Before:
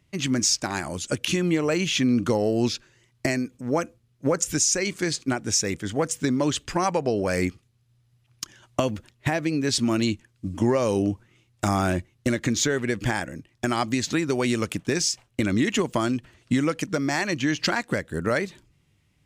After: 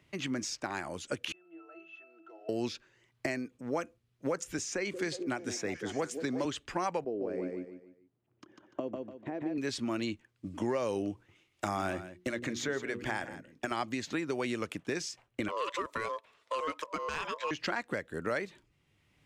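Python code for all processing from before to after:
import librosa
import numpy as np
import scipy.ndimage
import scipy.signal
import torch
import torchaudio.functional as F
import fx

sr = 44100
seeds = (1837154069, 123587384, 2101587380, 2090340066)

y = fx.chain(x, sr, fx.block_float(bits=5),
    fx.highpass(hz=510.0, slope=24),
    fx.octave_resonator(note='E', decay_s=0.42), at=(1.32, 2.49))
y = fx.chain(y, sr, fx.echo_stepped(ms=181, hz=340.0, octaves=0.7, feedback_pct=70, wet_db=-5.5),
    fx.band_squash(depth_pct=40), at=(4.58, 6.45))
y = fx.chain(y, sr, fx.bandpass_q(hz=330.0, q=1.5),
    fx.echo_feedback(ms=147, feedback_pct=29, wet_db=-3.5), at=(7.04, 9.58))
y = fx.chain(y, sr, fx.hum_notches(base_hz=60, count=8),
    fx.echo_single(ms=164, db=-14.5), at=(11.12, 13.71))
y = fx.chain(y, sr, fx.highpass(hz=220.0, slope=12),
    fx.ring_mod(carrier_hz=780.0), at=(15.48, 17.51))
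y = fx.bass_treble(y, sr, bass_db=-8, treble_db=-8)
y = fx.band_squash(y, sr, depth_pct=40)
y = y * librosa.db_to_amplitude(-7.5)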